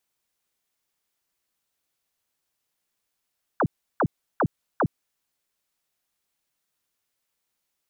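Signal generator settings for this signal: burst of laser zaps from 1700 Hz, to 100 Hz, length 0.06 s sine, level -18 dB, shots 4, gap 0.34 s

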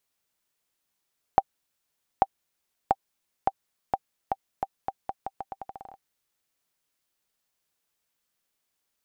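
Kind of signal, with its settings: bouncing ball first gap 0.84 s, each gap 0.82, 781 Hz, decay 43 ms -5 dBFS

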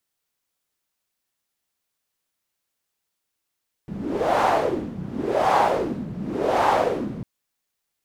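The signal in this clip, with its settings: wind-like swept noise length 3.35 s, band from 180 Hz, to 830 Hz, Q 3.4, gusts 3, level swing 13.5 dB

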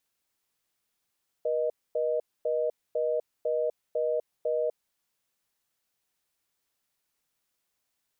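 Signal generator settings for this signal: call progress tone reorder tone, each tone -27.5 dBFS 3.32 s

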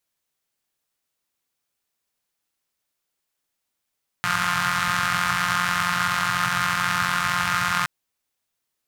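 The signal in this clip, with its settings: four-cylinder engine model, steady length 3.62 s, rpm 5300, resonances 130/1300 Hz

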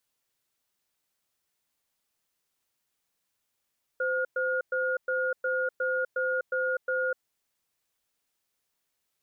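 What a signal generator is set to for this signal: cadence 516 Hz, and 1430 Hz, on 0.25 s, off 0.11 s, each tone -28 dBFS 3.22 s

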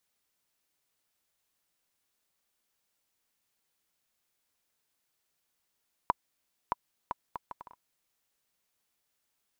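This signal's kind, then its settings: bouncing ball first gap 0.62 s, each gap 0.63, 979 Hz, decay 24 ms -11.5 dBFS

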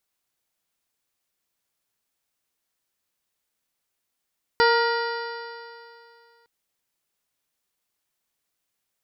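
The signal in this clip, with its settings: stretched partials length 1.86 s, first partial 464 Hz, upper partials -1/-2.5/-6/-20/-18/-19/-14/-8/-18 dB, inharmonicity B 0.0033, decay 2.50 s, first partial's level -18 dB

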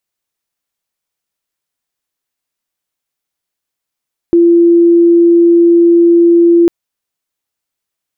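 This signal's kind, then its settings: tone sine 341 Hz -3.5 dBFS 2.35 s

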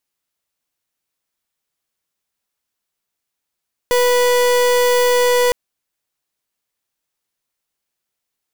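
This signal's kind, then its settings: pulse 491 Hz, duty 37% -14 dBFS 1.61 s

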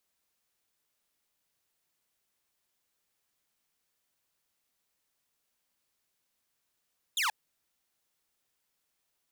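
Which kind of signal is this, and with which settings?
laser zap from 3800 Hz, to 790 Hz, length 0.13 s saw, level -24 dB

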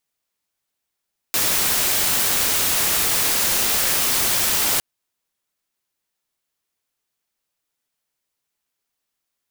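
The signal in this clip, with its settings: noise white, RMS -19.5 dBFS 3.46 s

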